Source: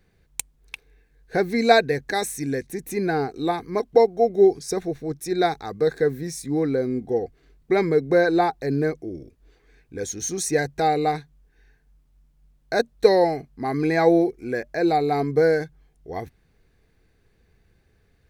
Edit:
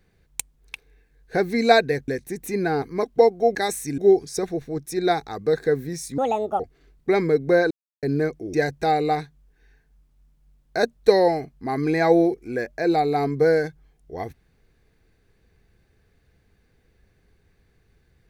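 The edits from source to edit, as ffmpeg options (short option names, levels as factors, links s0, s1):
-filter_complex "[0:a]asplit=10[s0][s1][s2][s3][s4][s5][s6][s7][s8][s9];[s0]atrim=end=2.082[s10];[s1]atrim=start=2.508:end=3.252[s11];[s2]atrim=start=3.588:end=4.322[s12];[s3]atrim=start=2.078:end=2.512[s13];[s4]atrim=start=4.318:end=6.524[s14];[s5]atrim=start=6.52:end=7.22,asetpts=PTS-STARTPTS,asetrate=74088,aresample=44100[s15];[s6]atrim=start=7.216:end=8.33,asetpts=PTS-STARTPTS,afade=t=out:st=1.11:d=0.004:c=hsin[s16];[s7]atrim=start=8.33:end=8.65,asetpts=PTS-STARTPTS,volume=0[s17];[s8]atrim=start=8.65:end=9.162,asetpts=PTS-STARTPTS,afade=t=in:d=0.004:c=hsin[s18];[s9]atrim=start=10.498[s19];[s10][s11]acrossfade=d=0.004:c1=hsin:c2=hsin[s20];[s20][s12]acrossfade=d=0.004:c1=hsin:c2=hsin[s21];[s21][s13]acrossfade=d=0.004:c1=hsin:c2=hsin[s22];[s22][s14]acrossfade=d=0.004:c1=hsin:c2=hsin[s23];[s23][s15]acrossfade=d=0.004:c1=hsin:c2=hsin[s24];[s16][s17][s18]concat=n=3:v=0:a=1[s25];[s24][s25]acrossfade=d=0.004:c1=hsin:c2=hsin[s26];[s26][s19]acrossfade=d=0.004:c1=hsin:c2=hsin"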